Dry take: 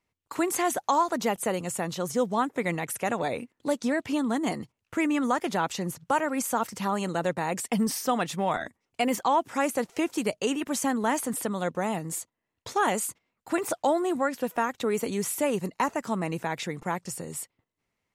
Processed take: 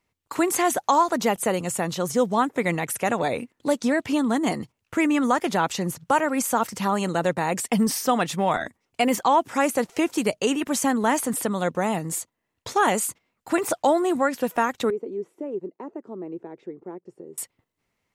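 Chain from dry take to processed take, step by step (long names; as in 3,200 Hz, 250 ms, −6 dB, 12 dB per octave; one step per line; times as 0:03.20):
0:14.90–0:17.38: resonant band-pass 370 Hz, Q 4.6
level +4.5 dB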